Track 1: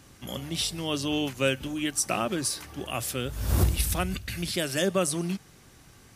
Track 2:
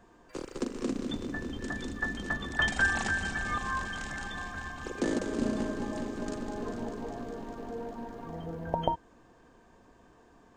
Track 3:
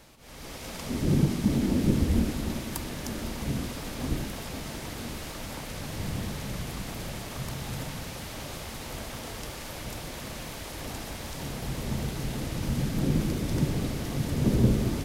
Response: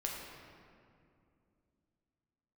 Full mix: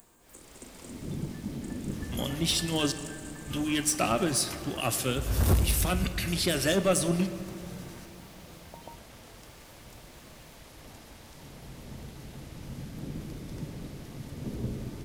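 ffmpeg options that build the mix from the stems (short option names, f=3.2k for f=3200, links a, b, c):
-filter_complex "[0:a]asoftclip=type=tanh:threshold=-21dB,acrossover=split=2400[a][b];[a]aeval=exprs='val(0)*(1-0.5/2+0.5/2*cos(2*PI*9.4*n/s))':c=same[c];[b]aeval=exprs='val(0)*(1-0.5/2-0.5/2*cos(2*PI*9.4*n/s))':c=same[d];[c][d]amix=inputs=2:normalize=0,adelay=1900,volume=2.5dB,asplit=3[e][f][g];[e]atrim=end=2.92,asetpts=PTS-STARTPTS,afade=t=out:st=2.916:d=0.004:c=hsin[h];[f]atrim=start=2.92:end=3.5,asetpts=PTS-STARTPTS,volume=0[i];[g]atrim=start=3.5,asetpts=PTS-STARTPTS,afade=t=in:d=0.004:c=hsin[j];[h][i][j]concat=n=3:v=0:a=1,asplit=2[k][l];[l]volume=-7dB[m];[1:a]acompressor=mode=upward:threshold=-35dB:ratio=2.5,aexciter=amount=9.7:drive=9.8:freq=7.5k,volume=-18.5dB[n];[2:a]volume=-15dB,asplit=2[o][p];[p]volume=-6.5dB[q];[3:a]atrim=start_sample=2205[r];[m][q]amix=inputs=2:normalize=0[s];[s][r]afir=irnorm=-1:irlink=0[t];[k][n][o][t]amix=inputs=4:normalize=0"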